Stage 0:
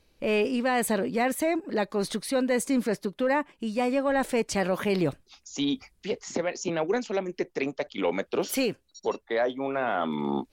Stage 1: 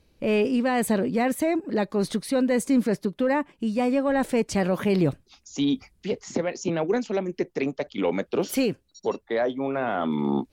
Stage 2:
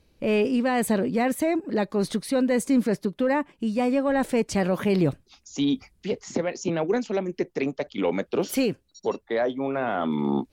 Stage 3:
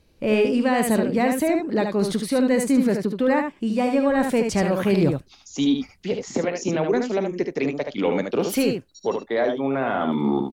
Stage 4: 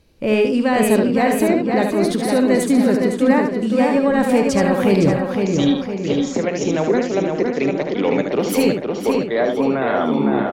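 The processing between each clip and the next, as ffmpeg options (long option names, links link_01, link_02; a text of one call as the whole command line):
ffmpeg -i in.wav -af "equalizer=frequency=120:width=0.34:gain=7.5,volume=-1dB" out.wav
ffmpeg -i in.wav -af anull out.wav
ffmpeg -i in.wav -af "aecho=1:1:51|74:0.15|0.531,volume=2dB" out.wav
ffmpeg -i in.wav -filter_complex "[0:a]asplit=2[link_01][link_02];[link_02]adelay=511,lowpass=frequency=3900:poles=1,volume=-4dB,asplit=2[link_03][link_04];[link_04]adelay=511,lowpass=frequency=3900:poles=1,volume=0.53,asplit=2[link_05][link_06];[link_06]adelay=511,lowpass=frequency=3900:poles=1,volume=0.53,asplit=2[link_07][link_08];[link_08]adelay=511,lowpass=frequency=3900:poles=1,volume=0.53,asplit=2[link_09][link_10];[link_10]adelay=511,lowpass=frequency=3900:poles=1,volume=0.53,asplit=2[link_11][link_12];[link_12]adelay=511,lowpass=frequency=3900:poles=1,volume=0.53,asplit=2[link_13][link_14];[link_14]adelay=511,lowpass=frequency=3900:poles=1,volume=0.53[link_15];[link_01][link_03][link_05][link_07][link_09][link_11][link_13][link_15]amix=inputs=8:normalize=0,volume=3dB" out.wav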